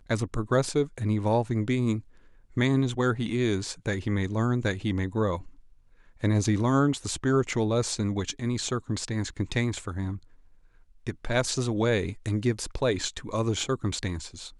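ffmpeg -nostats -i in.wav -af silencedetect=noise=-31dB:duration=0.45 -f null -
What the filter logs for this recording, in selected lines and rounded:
silence_start: 1.99
silence_end: 2.57 | silence_duration: 0.58
silence_start: 5.37
silence_end: 6.24 | silence_duration: 0.86
silence_start: 10.15
silence_end: 11.07 | silence_duration: 0.91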